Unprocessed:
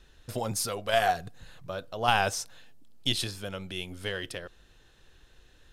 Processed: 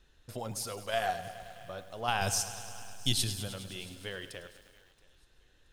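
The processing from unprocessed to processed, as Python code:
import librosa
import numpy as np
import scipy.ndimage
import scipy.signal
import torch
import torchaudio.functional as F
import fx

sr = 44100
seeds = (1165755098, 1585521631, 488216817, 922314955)

y = fx.bass_treble(x, sr, bass_db=10, treble_db=12, at=(2.21, 3.48))
y = fx.echo_thinned(y, sr, ms=676, feedback_pct=35, hz=420.0, wet_db=-23.5)
y = fx.echo_crushed(y, sr, ms=104, feedback_pct=80, bits=8, wet_db=-13.5)
y = F.gain(torch.from_numpy(y), -7.0).numpy()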